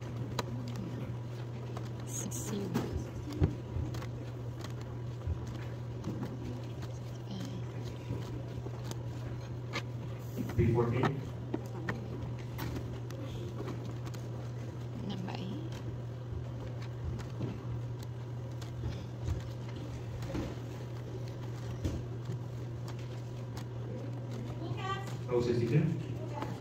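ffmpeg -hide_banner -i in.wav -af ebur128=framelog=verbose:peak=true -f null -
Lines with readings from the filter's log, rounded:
Integrated loudness:
  I:         -38.4 LUFS
  Threshold: -48.4 LUFS
Loudness range:
  LRA:         5.3 LU
  Threshold: -58.8 LUFS
  LRA low:   -40.7 LUFS
  LRA high:  -35.5 LUFS
True peak:
  Peak:      -13.6 dBFS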